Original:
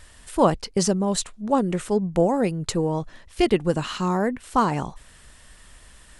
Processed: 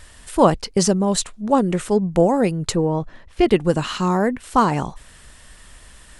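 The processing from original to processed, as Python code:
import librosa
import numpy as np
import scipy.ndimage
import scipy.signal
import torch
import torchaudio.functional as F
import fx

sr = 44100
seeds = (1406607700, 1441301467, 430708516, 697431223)

y = fx.lowpass(x, sr, hz=2000.0, slope=6, at=(2.75, 3.48))
y = y * 10.0 ** (4.0 / 20.0)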